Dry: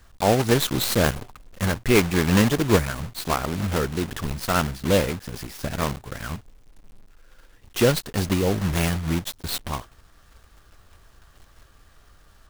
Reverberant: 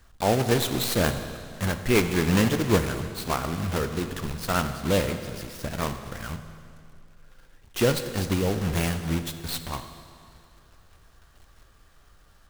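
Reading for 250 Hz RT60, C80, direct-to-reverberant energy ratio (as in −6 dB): 2.4 s, 10.5 dB, 8.5 dB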